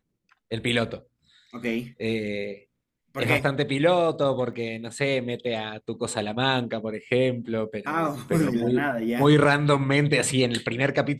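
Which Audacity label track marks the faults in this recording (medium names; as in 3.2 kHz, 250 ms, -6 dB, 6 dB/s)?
4.530000	4.530000	dropout 2.3 ms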